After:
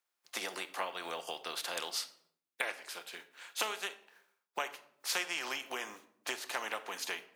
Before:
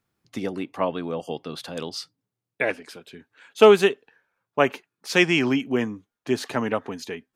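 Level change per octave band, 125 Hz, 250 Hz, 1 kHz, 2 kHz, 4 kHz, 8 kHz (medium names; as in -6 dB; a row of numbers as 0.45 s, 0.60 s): under -30 dB, -27.5 dB, -11.5 dB, -10.5 dB, -7.0 dB, -0.5 dB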